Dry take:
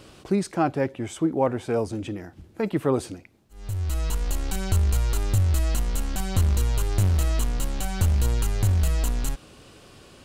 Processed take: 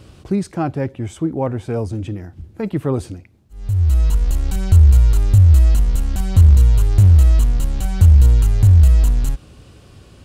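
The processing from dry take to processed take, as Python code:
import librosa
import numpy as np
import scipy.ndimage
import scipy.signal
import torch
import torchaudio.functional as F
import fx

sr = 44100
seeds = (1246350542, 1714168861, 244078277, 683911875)

y = fx.peak_eq(x, sr, hz=71.0, db=14.0, octaves=2.6)
y = F.gain(torch.from_numpy(y), -1.0).numpy()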